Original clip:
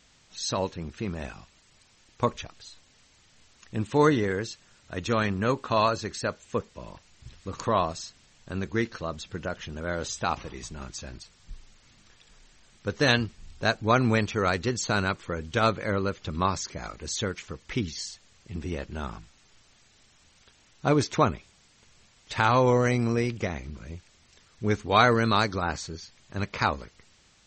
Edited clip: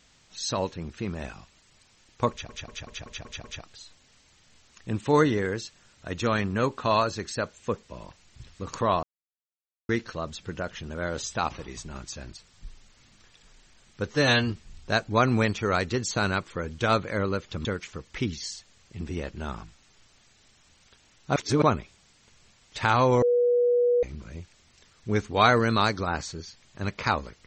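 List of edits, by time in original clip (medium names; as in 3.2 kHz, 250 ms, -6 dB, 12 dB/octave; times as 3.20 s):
2.30 s: stutter 0.19 s, 7 plays
7.89–8.75 s: mute
12.97–13.23 s: stretch 1.5×
16.38–17.20 s: delete
20.91–21.17 s: reverse
22.77–23.58 s: bleep 485 Hz -18.5 dBFS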